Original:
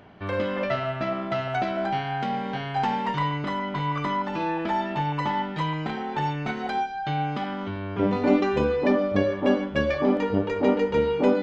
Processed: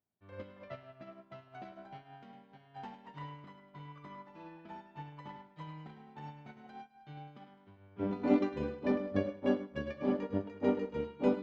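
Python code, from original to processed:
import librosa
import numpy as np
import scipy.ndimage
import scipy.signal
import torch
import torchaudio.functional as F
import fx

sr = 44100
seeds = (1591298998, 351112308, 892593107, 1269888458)

p1 = scipy.signal.sosfilt(scipy.signal.butter(2, 48.0, 'highpass', fs=sr, output='sos'), x)
p2 = fx.low_shelf(p1, sr, hz=450.0, db=5.5)
p3 = p2 + fx.echo_feedback(p2, sr, ms=104, feedback_pct=58, wet_db=-8, dry=0)
p4 = fx.upward_expand(p3, sr, threshold_db=-38.0, expansion=2.5)
y = p4 * librosa.db_to_amplitude(-8.5)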